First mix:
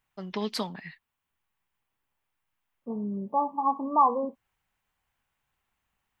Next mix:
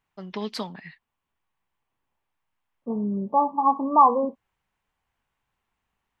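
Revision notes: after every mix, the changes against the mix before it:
second voice +5.5 dB; master: add treble shelf 10 kHz -9.5 dB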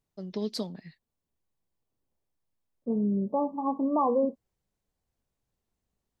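master: add high-order bell 1.6 kHz -13.5 dB 2.3 oct

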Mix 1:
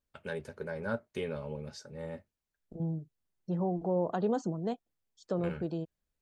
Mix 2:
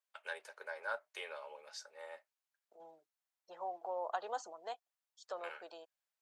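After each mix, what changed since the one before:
master: add high-pass 700 Hz 24 dB/octave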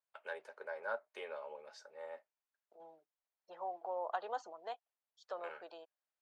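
first voice: add tilt EQ -4 dB/octave; second voice: add low-pass 3.9 kHz 12 dB/octave

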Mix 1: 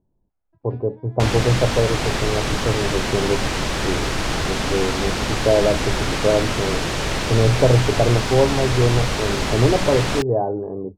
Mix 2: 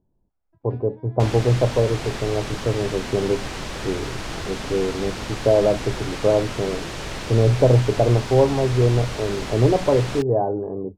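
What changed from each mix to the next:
second sound -8.0 dB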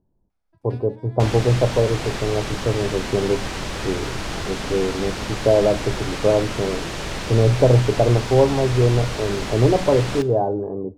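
first sound: remove tape spacing loss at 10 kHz 36 dB; reverb: on, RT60 0.95 s

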